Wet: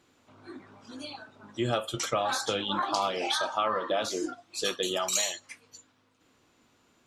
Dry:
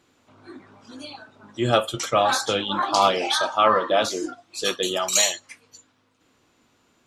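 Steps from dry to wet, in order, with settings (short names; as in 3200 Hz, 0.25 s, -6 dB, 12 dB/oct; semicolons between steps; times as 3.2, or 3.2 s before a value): compressor 4:1, threshold -23 dBFS, peak gain reduction 9.5 dB; gain -2.5 dB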